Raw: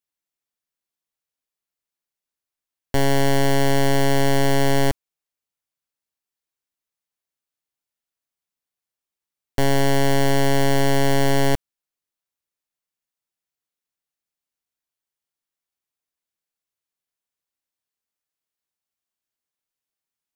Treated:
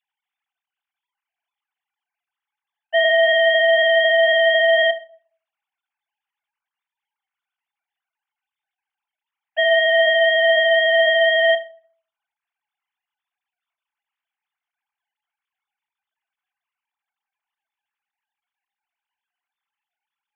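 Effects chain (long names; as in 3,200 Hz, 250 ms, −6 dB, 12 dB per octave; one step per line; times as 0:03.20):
three sine waves on the formant tracks
low shelf with overshoot 690 Hz −6 dB, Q 1.5
rectangular room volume 510 cubic metres, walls furnished, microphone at 0.76 metres
level +2 dB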